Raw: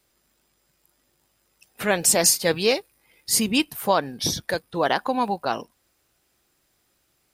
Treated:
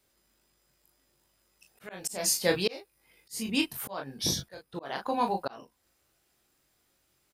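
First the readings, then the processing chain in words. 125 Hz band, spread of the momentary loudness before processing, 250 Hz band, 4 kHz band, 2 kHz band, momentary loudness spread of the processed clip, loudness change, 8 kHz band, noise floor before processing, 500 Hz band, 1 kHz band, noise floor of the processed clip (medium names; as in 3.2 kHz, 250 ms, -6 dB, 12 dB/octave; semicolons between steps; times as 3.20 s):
-6.5 dB, 11 LU, -7.5 dB, -7.5 dB, -9.5 dB, 16 LU, -8.5 dB, -10.5 dB, -69 dBFS, -9.5 dB, -9.0 dB, -73 dBFS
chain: early reflections 22 ms -6 dB, 37 ms -7.5 dB; slow attack 405 ms; trim -5 dB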